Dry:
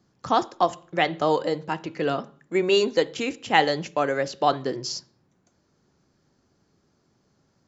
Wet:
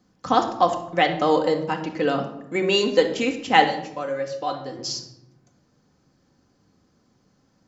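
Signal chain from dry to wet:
0:03.64–0:04.79: tuned comb filter 110 Hz, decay 0.19 s, harmonics odd, mix 80%
rectangular room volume 2,700 cubic metres, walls furnished, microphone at 2 metres
level +1 dB

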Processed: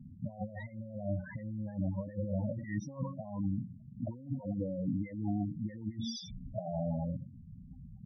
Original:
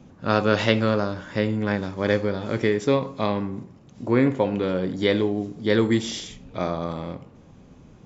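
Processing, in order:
phaser with its sweep stopped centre 2,000 Hz, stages 8
compressor whose output falls as the input rises −32 dBFS, ratio −0.5
spectral peaks only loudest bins 8
level −2.5 dB

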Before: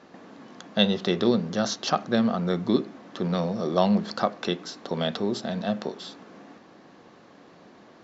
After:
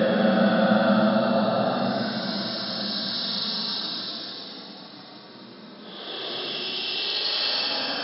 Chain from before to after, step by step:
extreme stretch with random phases 25×, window 0.05 s, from 0:01.58
brick-wall band-pass 110–5,400 Hz
feedback delay with all-pass diffusion 532 ms, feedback 59%, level −15 dB
level +2.5 dB

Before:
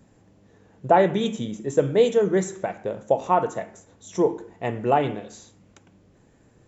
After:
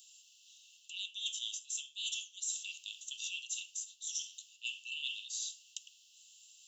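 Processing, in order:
Chebyshev high-pass filter 2,700 Hz, order 10
reversed playback
downward compressor 8 to 1, threshold −51 dBFS, peak gain reduction 19 dB
reversed playback
level +14.5 dB

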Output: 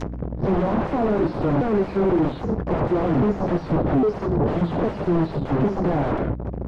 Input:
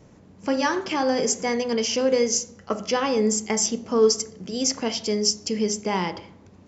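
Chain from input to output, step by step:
pitch shifter swept by a sawtooth −9.5 semitones, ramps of 806 ms
leveller curve on the samples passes 5
mains hum 60 Hz, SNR 31 dB
sine wavefolder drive 16 dB, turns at −8.5 dBFS
treble cut that deepens with the level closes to 720 Hz, closed at −20.5 dBFS
level −5.5 dB

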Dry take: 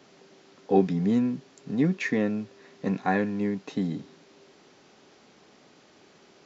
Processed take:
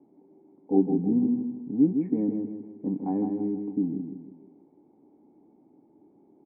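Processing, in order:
formant resonators in series u
repeating echo 159 ms, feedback 41%, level −6 dB
level +6 dB

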